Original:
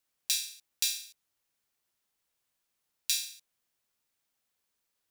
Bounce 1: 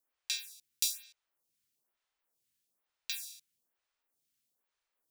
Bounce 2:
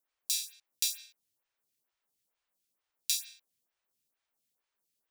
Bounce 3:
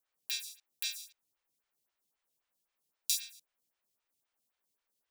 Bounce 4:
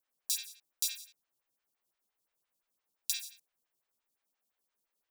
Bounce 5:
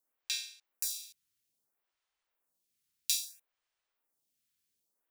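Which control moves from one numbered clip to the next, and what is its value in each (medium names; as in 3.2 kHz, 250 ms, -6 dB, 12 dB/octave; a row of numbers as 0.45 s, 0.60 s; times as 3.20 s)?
lamp-driven phase shifter, rate: 1.1 Hz, 2.2 Hz, 3.8 Hz, 5.8 Hz, 0.61 Hz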